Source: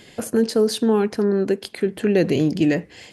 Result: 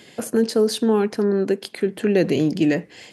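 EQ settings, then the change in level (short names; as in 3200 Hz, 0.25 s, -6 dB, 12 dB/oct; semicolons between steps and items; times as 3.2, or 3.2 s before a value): HPF 130 Hz 12 dB/oct; 0.0 dB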